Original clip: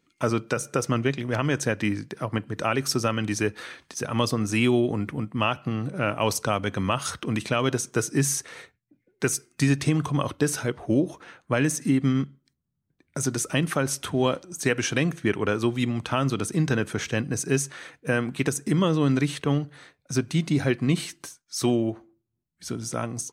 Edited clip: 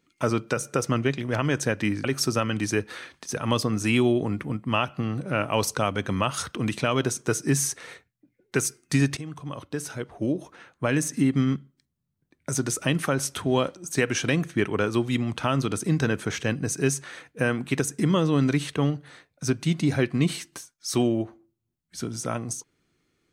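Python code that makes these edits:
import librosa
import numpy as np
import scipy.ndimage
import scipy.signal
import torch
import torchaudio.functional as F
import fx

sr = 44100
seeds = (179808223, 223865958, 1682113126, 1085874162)

y = fx.edit(x, sr, fx.cut(start_s=2.04, length_s=0.68),
    fx.fade_in_from(start_s=9.85, length_s=2.03, floor_db=-15.5), tone=tone)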